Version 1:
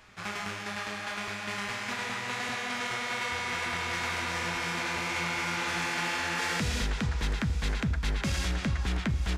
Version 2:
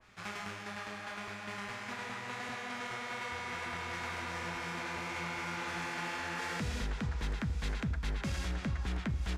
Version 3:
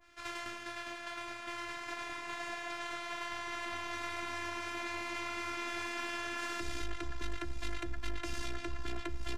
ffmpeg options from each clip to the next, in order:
-af "adynamicequalizer=threshold=0.00631:dfrequency=2000:dqfactor=0.7:tfrequency=2000:tqfactor=0.7:attack=5:release=100:ratio=0.375:range=2.5:mode=cutabove:tftype=highshelf,volume=-5.5dB"
-af "aeval=exprs='(tanh(28.2*val(0)+0.65)-tanh(0.65))/28.2':c=same,afftfilt=real='hypot(re,im)*cos(PI*b)':imag='0':win_size=512:overlap=0.75,volume=6dB"

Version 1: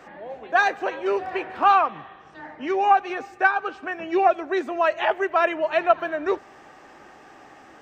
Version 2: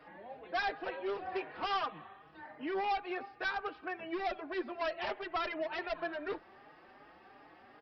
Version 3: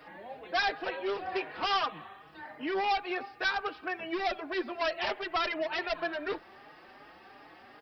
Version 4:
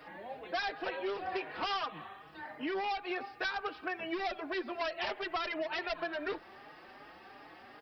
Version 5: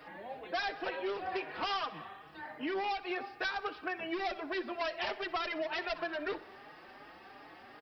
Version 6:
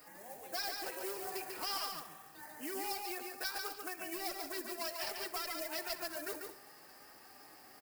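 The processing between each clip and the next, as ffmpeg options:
-filter_complex "[0:a]aresample=11025,volume=22dB,asoftclip=hard,volume=-22dB,aresample=44100,asplit=2[a][b];[b]adelay=4.4,afreqshift=2.7[c];[a][c]amix=inputs=2:normalize=1,volume=-7dB"
-af "highshelf=f=3.3k:g=10,volume=3.5dB"
-af "acompressor=threshold=-32dB:ratio=6"
-af "aecho=1:1:62|124|186|248|310:0.112|0.0673|0.0404|0.0242|0.0145"
-af "acrusher=bits=6:mode=log:mix=0:aa=0.000001,aecho=1:1:143|210:0.596|0.141,aexciter=amount=11:drive=5:freq=5.1k,volume=-8dB"

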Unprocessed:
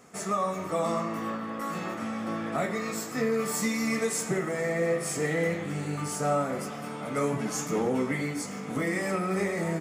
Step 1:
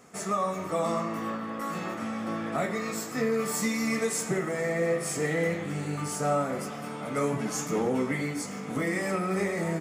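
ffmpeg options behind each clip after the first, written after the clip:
-af anull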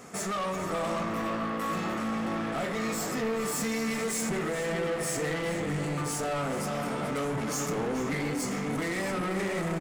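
-filter_complex "[0:a]asplit=2[a][b];[b]alimiter=level_in=5dB:limit=-24dB:level=0:latency=1,volume=-5dB,volume=2.5dB[c];[a][c]amix=inputs=2:normalize=0,asoftclip=type=tanh:threshold=-28.5dB,asplit=2[d][e];[e]adelay=431.5,volume=-6dB,highshelf=f=4k:g=-9.71[f];[d][f]amix=inputs=2:normalize=0"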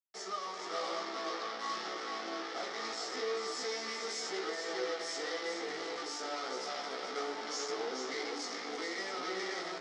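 -af "acrusher=bits=4:mix=0:aa=0.5,flanger=delay=15:depth=2:speed=0.88,highpass=f=390:w=0.5412,highpass=f=390:w=1.3066,equalizer=f=580:t=q:w=4:g=-9,equalizer=f=1k:t=q:w=4:g=-7,equalizer=f=1.6k:t=q:w=4:g=-5,equalizer=f=2.6k:t=q:w=4:g=-10,equalizer=f=5.3k:t=q:w=4:g=8,lowpass=f=5.6k:w=0.5412,lowpass=f=5.6k:w=1.3066"

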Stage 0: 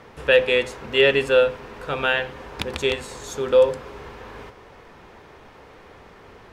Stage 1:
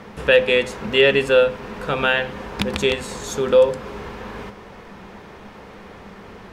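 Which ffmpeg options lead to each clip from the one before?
-filter_complex "[0:a]equalizer=f=200:t=o:w=0.24:g=14,asplit=2[a][b];[b]acompressor=threshold=-25dB:ratio=6,volume=-2dB[c];[a][c]amix=inputs=2:normalize=0"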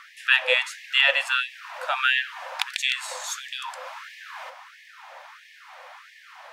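-af "afftfilt=real='re*gte(b*sr/1024,490*pow(1700/490,0.5+0.5*sin(2*PI*1.5*pts/sr)))':imag='im*gte(b*sr/1024,490*pow(1700/490,0.5+0.5*sin(2*PI*1.5*pts/sr)))':win_size=1024:overlap=0.75"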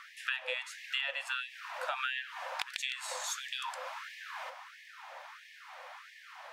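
-af "acompressor=threshold=-28dB:ratio=8,volume=-4dB"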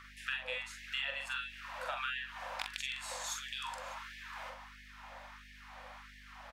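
-af "bandreject=f=46.15:t=h:w=4,bandreject=f=92.3:t=h:w=4,bandreject=f=138.45:t=h:w=4,bandreject=f=184.6:t=h:w=4,bandreject=f=230.75:t=h:w=4,bandreject=f=276.9:t=h:w=4,bandreject=f=323.05:t=h:w=4,bandreject=f=369.2:t=h:w=4,bandreject=f=415.35:t=h:w=4,aeval=exprs='val(0)+0.00158*(sin(2*PI*50*n/s)+sin(2*PI*2*50*n/s)/2+sin(2*PI*3*50*n/s)/3+sin(2*PI*4*50*n/s)/4+sin(2*PI*5*50*n/s)/5)':c=same,aecho=1:1:44|61|597:0.596|0.119|0.106,volume=-4dB"

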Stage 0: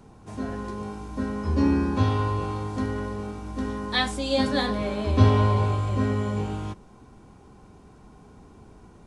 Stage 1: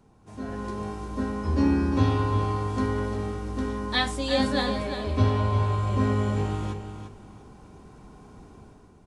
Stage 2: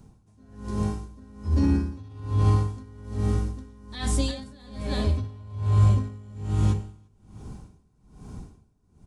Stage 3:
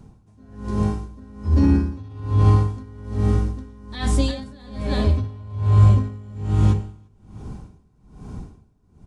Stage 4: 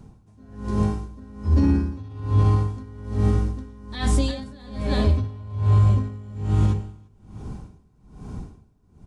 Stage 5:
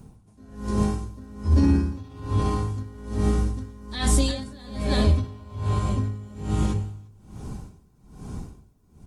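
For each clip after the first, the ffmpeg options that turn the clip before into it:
-filter_complex "[0:a]dynaudnorm=f=110:g=9:m=10dB,asplit=2[a][b];[b]aecho=0:1:350|700|1050:0.355|0.0852|0.0204[c];[a][c]amix=inputs=2:normalize=0,volume=-8.5dB"
-af "alimiter=limit=-19.5dB:level=0:latency=1:release=39,bass=f=250:g=12,treble=f=4k:g=9,aeval=exprs='val(0)*pow(10,-26*(0.5-0.5*cos(2*PI*1.2*n/s))/20)':c=same"
-af "highshelf=f=5k:g=-8.5,volume=5.5dB"
-af "alimiter=limit=-10dB:level=0:latency=1:release=293"
-af "crystalizer=i=1.5:c=0,bandreject=f=51.56:t=h:w=4,bandreject=f=103.12:t=h:w=4" -ar 48000 -c:a libopus -b:a 32k

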